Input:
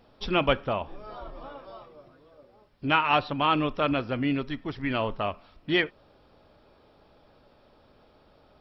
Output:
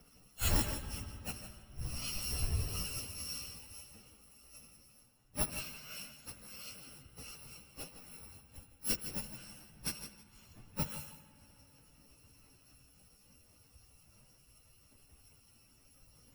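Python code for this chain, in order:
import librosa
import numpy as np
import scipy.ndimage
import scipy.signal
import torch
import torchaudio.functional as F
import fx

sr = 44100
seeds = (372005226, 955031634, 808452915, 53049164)

p1 = fx.bit_reversed(x, sr, seeds[0], block=128)
p2 = fx.whisperise(p1, sr, seeds[1])
p3 = fx.hum_notches(p2, sr, base_hz=50, count=8)
p4 = fx.gate_flip(p3, sr, shuts_db=-21.0, range_db=-25)
p5 = fx.high_shelf(p4, sr, hz=4400.0, db=-6.5)
p6 = p5 + fx.echo_feedback(p5, sr, ms=85, feedback_pct=29, wet_db=-9.5, dry=0)
p7 = fx.rev_spring(p6, sr, rt60_s=2.9, pass_ms=(33,), chirp_ms=35, drr_db=10.0)
p8 = fx.stretch_vocoder_free(p7, sr, factor=1.9)
p9 = fx.band_widen(p8, sr, depth_pct=40)
y = p9 * librosa.db_to_amplitude(7.0)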